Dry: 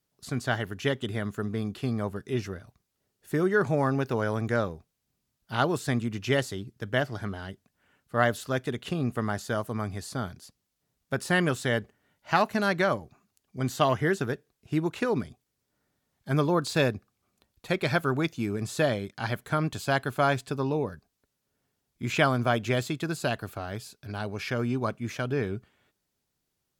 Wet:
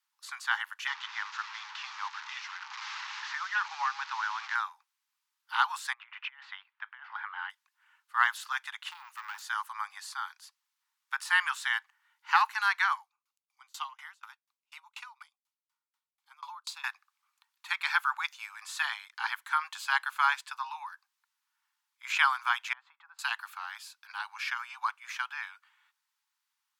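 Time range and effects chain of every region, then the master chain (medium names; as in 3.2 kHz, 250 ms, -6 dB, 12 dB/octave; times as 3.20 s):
0.87–4.55 s: one-bit delta coder 32 kbps, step -35.5 dBFS + three bands compressed up and down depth 40%
5.93–7.50 s: low-pass 2.8 kHz 24 dB/octave + compressor with a negative ratio -33 dBFS, ratio -0.5
8.91–9.42 s: valve stage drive 32 dB, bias 0.45 + careless resampling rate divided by 2×, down none, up hold + three bands compressed up and down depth 40%
13.01–16.84 s: peaking EQ 1.7 kHz -11.5 dB 0.32 oct + sawtooth tremolo in dB decaying 4.1 Hz, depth 31 dB
22.73–23.19 s: low-pass 1.1 kHz + compression, threshold -38 dBFS + tape noise reduction on one side only decoder only
whole clip: steep high-pass 860 Hz 96 dB/octave; treble shelf 4.3 kHz -8.5 dB; trim +3.5 dB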